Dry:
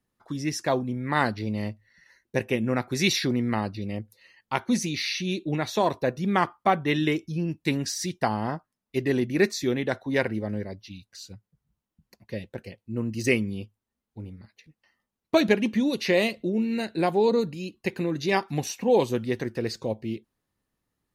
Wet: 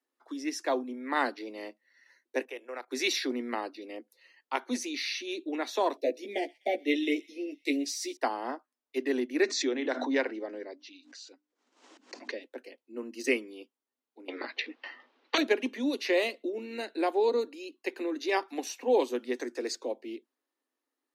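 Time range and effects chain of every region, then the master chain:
2.45–2.91 s: high-pass 410 Hz 24 dB/octave + level held to a coarse grid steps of 17 dB
5.97–8.17 s: Chebyshev band-stop 670–2100 Hz, order 3 + doubling 14 ms -3.5 dB + feedback echo behind a high-pass 126 ms, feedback 58%, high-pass 2.6 kHz, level -21 dB
9.43–12.43 s: steep low-pass 7.6 kHz + hum notches 50/100/150/200/250/300 Hz + swell ahead of each attack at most 38 dB/s
14.28–15.38 s: low-pass 4 kHz 24 dB/octave + peaking EQ 85 Hz -7 dB 2.6 oct + spectrum-flattening compressor 10:1
19.34–19.75 s: peaking EQ 7.1 kHz +13.5 dB 0.63 oct + band-stop 2.9 kHz, Q 9.3
whole clip: steep high-pass 250 Hz 96 dB/octave; treble shelf 8 kHz -4.5 dB; trim -4 dB

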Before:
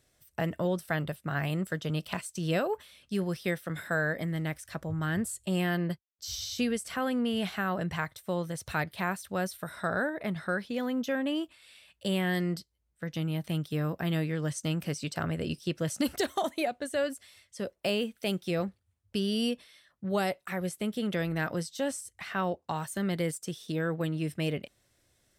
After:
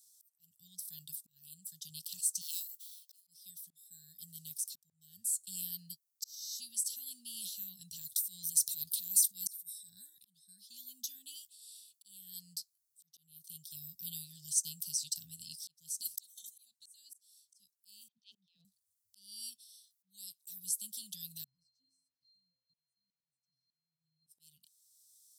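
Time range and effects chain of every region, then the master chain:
2.41–3.27 s: median filter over 5 samples + brick-wall FIR high-pass 480 Hz + treble shelf 8.6 kHz +7.5 dB
8.01–9.90 s: treble shelf 5.6 kHz +6.5 dB + transient shaper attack -9 dB, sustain +6 dB
18.08–18.65 s: cabinet simulation 130–3000 Hz, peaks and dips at 250 Hz +8 dB, 410 Hz +10 dB, 630 Hz +7 dB, 920 Hz -10 dB + transient shaper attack -10 dB, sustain -3 dB + phase dispersion lows, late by 99 ms, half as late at 410 Hz
21.44–24.27 s: pitch-class resonator C, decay 0.69 s + delay 402 ms -19 dB
whole clip: inverse Chebyshev band-stop 320–2300 Hz, stop band 40 dB; slow attack 764 ms; differentiator; trim +9 dB

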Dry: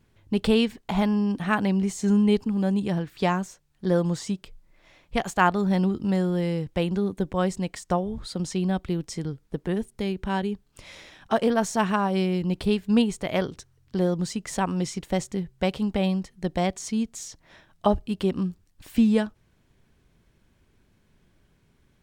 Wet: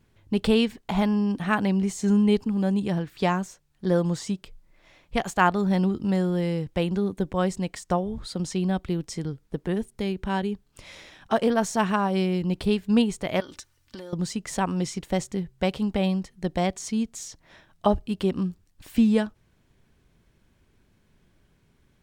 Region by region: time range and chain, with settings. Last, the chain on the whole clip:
13.40–14.13 s: tilt shelf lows -6.5 dB, about 730 Hz + comb 3.4 ms, depth 56% + compression 12:1, threshold -35 dBFS
whole clip: none

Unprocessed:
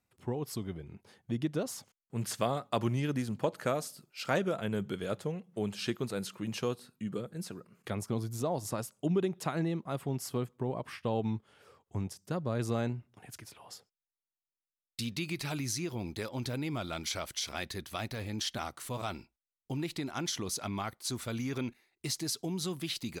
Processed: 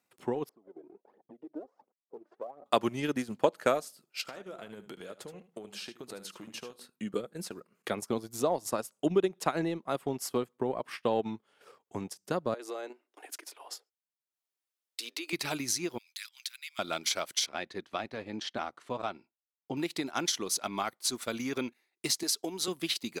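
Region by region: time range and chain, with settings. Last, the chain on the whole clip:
0.49–2.66 s: compression, threshold -43 dBFS + Butterworth band-pass 480 Hz, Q 0.86 + phaser 1.4 Hz, delay 3.4 ms, feedback 64%
4.21–6.76 s: compression 16:1, threshold -42 dBFS + delay 75 ms -9 dB
12.54–15.33 s: steep high-pass 280 Hz 72 dB/octave + compression 3:1, threshold -40 dBFS
15.98–16.79 s: de-esser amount 80% + Bessel high-pass 2.7 kHz, order 6
17.46–19.77 s: high-pass 49 Hz + tape spacing loss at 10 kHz 21 dB
22.23–22.68 s: de-esser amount 35% + high-pass 270 Hz
whole clip: high-pass 270 Hz 12 dB/octave; transient shaper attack +3 dB, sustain -9 dB; trim +4 dB

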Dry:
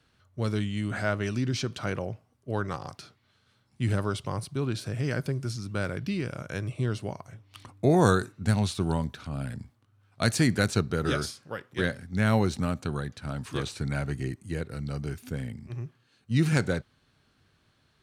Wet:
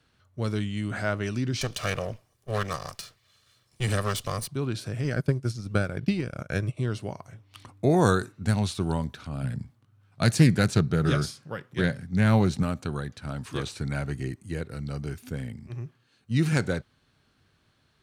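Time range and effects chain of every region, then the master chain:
1.61–4.48 s: comb filter that takes the minimum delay 1.7 ms + treble shelf 2.3 kHz +10 dB
5.04–6.77 s: high-pass 45 Hz + bass shelf 65 Hz +9 dB + transient shaper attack +9 dB, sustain -11 dB
9.43–12.63 s: peaking EQ 150 Hz +8.5 dB 0.84 oct + loudspeaker Doppler distortion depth 0.21 ms
whole clip: none

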